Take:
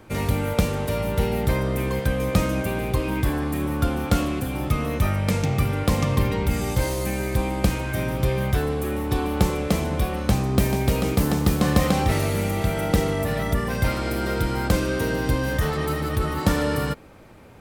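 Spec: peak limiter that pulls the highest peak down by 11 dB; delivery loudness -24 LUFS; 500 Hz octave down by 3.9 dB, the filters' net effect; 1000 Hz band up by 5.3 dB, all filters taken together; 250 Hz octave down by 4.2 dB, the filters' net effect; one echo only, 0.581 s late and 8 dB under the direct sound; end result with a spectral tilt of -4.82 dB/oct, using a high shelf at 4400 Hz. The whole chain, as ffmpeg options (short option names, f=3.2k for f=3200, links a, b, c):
-af "equalizer=f=250:t=o:g=-5,equalizer=f=500:t=o:g=-5.5,equalizer=f=1k:t=o:g=8.5,highshelf=f=4.4k:g=4,alimiter=limit=-14.5dB:level=0:latency=1,aecho=1:1:581:0.398,volume=1dB"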